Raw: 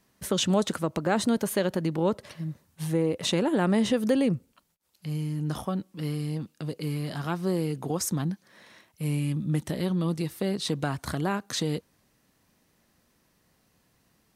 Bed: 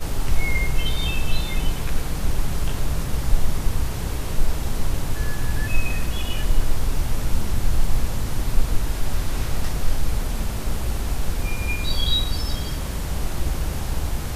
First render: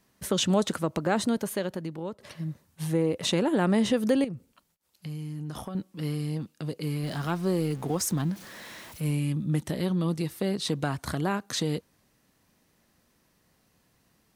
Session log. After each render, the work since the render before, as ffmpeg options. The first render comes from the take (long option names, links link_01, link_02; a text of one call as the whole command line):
ffmpeg -i in.wav -filter_complex "[0:a]asettb=1/sr,asplit=3[link_01][link_02][link_03];[link_01]atrim=end=4.244[link_04];[link_02]atrim=start=4.24:end=5.75,asetpts=PTS-STARTPTS,afade=type=in:duration=0.004:curve=qsin,afade=type=out:start_time=1.506:duration=0.004:curve=qsin,acompressor=threshold=-32dB:ratio=6:attack=3.2:release=140:knee=1:detection=peak[link_05];[link_03]atrim=start=5.746[link_06];[link_04][link_05]acrossfade=duration=0.004:curve1=hsin:curve2=qsin[link_07];[link_07][link_06]acrossfade=duration=0.004:curve1=qsin:curve2=hsin,asettb=1/sr,asplit=3[link_08][link_09][link_10];[link_08]atrim=end=7.034[link_11];[link_09]atrim=start=7.03:end=9.11,asetpts=PTS-STARTPTS,afade=type=in:duration=0.004:curve=qsin,afade=type=out:start_time=2.076:duration=0.004:curve=qsin,aeval=exprs='val(0)+0.5*0.00891*sgn(val(0))':channel_layout=same[link_12];[link_10]atrim=start=9.106[link_13];[link_11][link_12]acrossfade=duration=0.004:curve1=hsin:curve2=qsin[link_14];[link_14][link_13]acrossfade=duration=0.004:curve1=qsin:curve2=hsin,asplit=2[link_15][link_16];[link_15]atrim=end=2.2,asetpts=PTS-STARTPTS,afade=type=out:start_time=1.02:duration=1.18:silence=0.211349[link_17];[link_16]atrim=start=2.2,asetpts=PTS-STARTPTS,afade=type=in:duration=0.004:curve=hsin:silence=0.211349[link_18];[link_17][link_18]concat=n=2:v=0:a=1" out.wav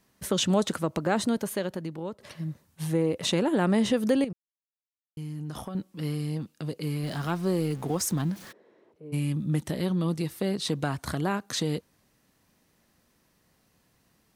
ffmpeg -i in.wav -filter_complex "[0:a]asplit=3[link_01][link_02][link_03];[link_01]afade=type=out:start_time=8.51:duration=0.02[link_04];[link_02]bandpass=frequency=410:width_type=q:width=4.6,afade=type=in:start_time=8.51:duration=0.02,afade=type=out:start_time=9.12:duration=0.02[link_05];[link_03]afade=type=in:start_time=9.12:duration=0.02[link_06];[link_04][link_05][link_06]amix=inputs=3:normalize=0,asplit=3[link_07][link_08][link_09];[link_07]atrim=end=4.33,asetpts=PTS-STARTPTS,afade=type=out:start_time=4.326:duration=0.004:curve=hsin[link_10];[link_08]atrim=start=4.33:end=5.17,asetpts=PTS-STARTPTS,volume=0[link_11];[link_09]atrim=start=5.17,asetpts=PTS-STARTPTS,afade=type=in:duration=0.004:curve=hsin[link_12];[link_10][link_11][link_12]concat=n=3:v=0:a=1" out.wav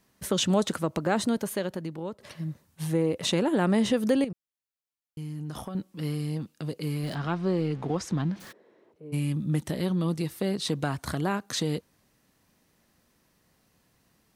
ffmpeg -i in.wav -filter_complex "[0:a]asplit=3[link_01][link_02][link_03];[link_01]afade=type=out:start_time=7.14:duration=0.02[link_04];[link_02]lowpass=4000,afade=type=in:start_time=7.14:duration=0.02,afade=type=out:start_time=8.39:duration=0.02[link_05];[link_03]afade=type=in:start_time=8.39:duration=0.02[link_06];[link_04][link_05][link_06]amix=inputs=3:normalize=0" out.wav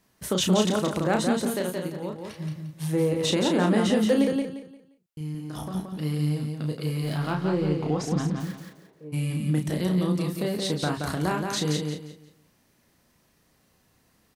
ffmpeg -i in.wav -filter_complex "[0:a]asplit=2[link_01][link_02];[link_02]adelay=33,volume=-5dB[link_03];[link_01][link_03]amix=inputs=2:normalize=0,aecho=1:1:175|350|525|700:0.596|0.167|0.0467|0.0131" out.wav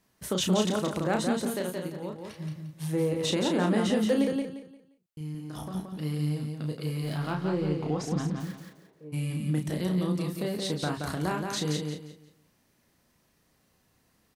ffmpeg -i in.wav -af "volume=-3.5dB" out.wav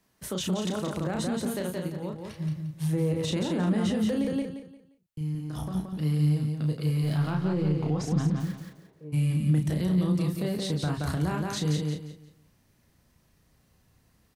ffmpeg -i in.wav -filter_complex "[0:a]acrossover=split=140[link_01][link_02];[link_01]dynaudnorm=framelen=750:gausssize=3:maxgain=10.5dB[link_03];[link_02]alimiter=limit=-23dB:level=0:latency=1:release=53[link_04];[link_03][link_04]amix=inputs=2:normalize=0" out.wav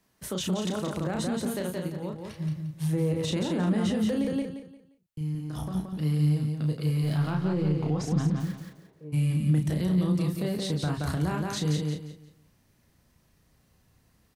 ffmpeg -i in.wav -af anull out.wav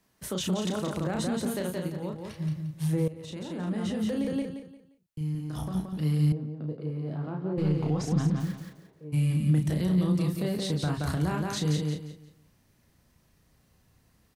ffmpeg -i in.wav -filter_complex "[0:a]asettb=1/sr,asplit=3[link_01][link_02][link_03];[link_01]atrim=end=6.324[link_04];[link_02]atrim=start=6.32:end=7.58,asetpts=PTS-STARTPTS,afade=type=in:duration=0.004:curve=qsin,afade=type=out:start_time=1.256:duration=0.004:curve=qsin,bandpass=frequency=400:width_type=q:width=0.96[link_05];[link_03]atrim=start=7.576[link_06];[link_04][link_05]acrossfade=duration=0.004:curve1=hsin:curve2=qsin[link_07];[link_07][link_06]acrossfade=duration=0.004:curve1=qsin:curve2=hsin,asplit=2[link_08][link_09];[link_08]atrim=end=3.08,asetpts=PTS-STARTPTS,afade=type=out:start_time=3.076:duration=0.004:curve=hsin:silence=0.149624[link_10];[link_09]atrim=start=3.08,asetpts=PTS-STARTPTS,afade=type=in:duration=1.47:silence=0.149624[link_11];[link_10][link_11]concat=n=2:v=0:a=1" out.wav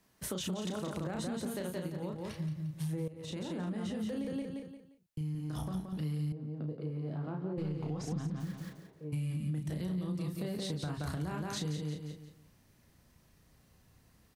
ffmpeg -i in.wav -af "acompressor=threshold=-35dB:ratio=4" out.wav